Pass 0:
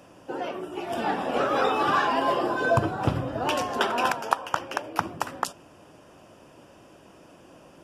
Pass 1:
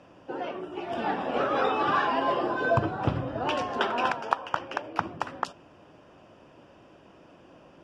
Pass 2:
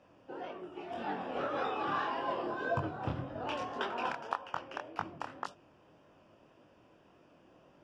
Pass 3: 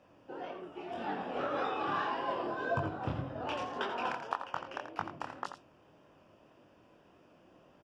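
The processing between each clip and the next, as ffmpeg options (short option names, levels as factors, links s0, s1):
-af "lowpass=4100,volume=0.794"
-af "flanger=delay=20:depth=7.8:speed=1.8,volume=0.501"
-af "aecho=1:1:85:0.335"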